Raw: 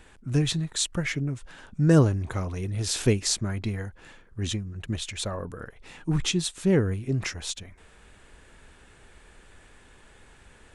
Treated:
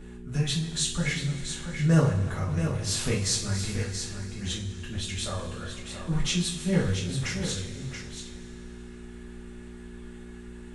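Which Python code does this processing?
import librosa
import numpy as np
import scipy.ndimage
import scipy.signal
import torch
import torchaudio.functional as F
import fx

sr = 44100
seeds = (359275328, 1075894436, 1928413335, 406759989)

p1 = fx.peak_eq(x, sr, hz=320.0, db=-14.0, octaves=0.65)
p2 = fx.dmg_buzz(p1, sr, base_hz=60.0, harmonics=7, level_db=-44.0, tilt_db=-1, odd_only=False)
p3 = p2 + fx.echo_single(p2, sr, ms=680, db=-8.0, dry=0)
p4 = fx.rev_double_slope(p3, sr, seeds[0], early_s=0.32, late_s=2.9, knee_db=-18, drr_db=-6.0)
y = p4 * 10.0 ** (-7.0 / 20.0)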